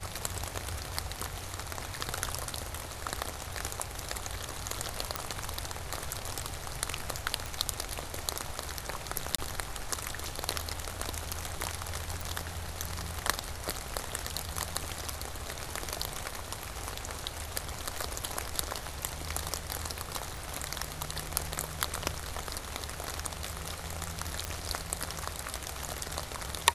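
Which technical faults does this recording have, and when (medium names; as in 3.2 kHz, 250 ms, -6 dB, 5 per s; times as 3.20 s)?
5.16 s: pop -12 dBFS
7.46 s: pop
9.36–9.38 s: dropout 24 ms
12.21 s: pop
20.37 s: pop
24.45 s: pop -16 dBFS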